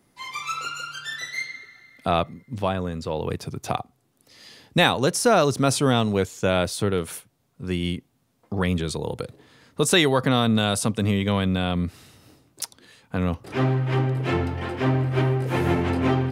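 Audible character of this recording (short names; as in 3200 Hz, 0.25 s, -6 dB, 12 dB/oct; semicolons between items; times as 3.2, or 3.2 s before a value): noise floor -66 dBFS; spectral tilt -5.0 dB/oct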